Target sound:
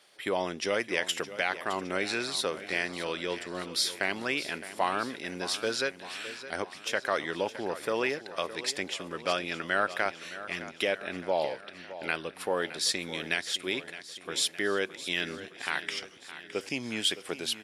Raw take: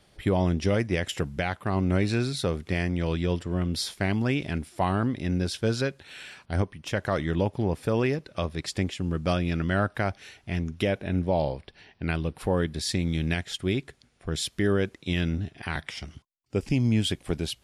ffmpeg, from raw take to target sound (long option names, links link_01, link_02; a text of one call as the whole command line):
ffmpeg -i in.wav -af "highpass=560,equalizer=frequency=750:width=1.5:gain=-4,aecho=1:1:614|1228|1842|2456|3070|3684:0.2|0.114|0.0648|0.037|0.0211|0.012,volume=3dB" out.wav